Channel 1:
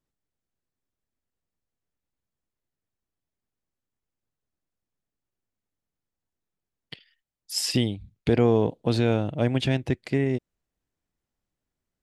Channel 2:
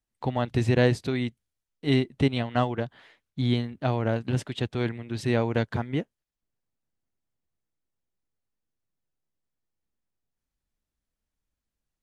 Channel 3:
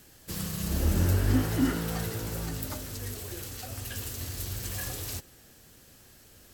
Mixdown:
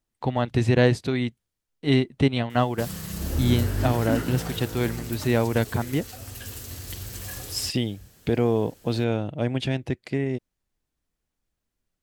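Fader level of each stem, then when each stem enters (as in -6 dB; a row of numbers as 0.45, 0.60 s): -2.0, +2.5, -1.0 dB; 0.00, 0.00, 2.50 s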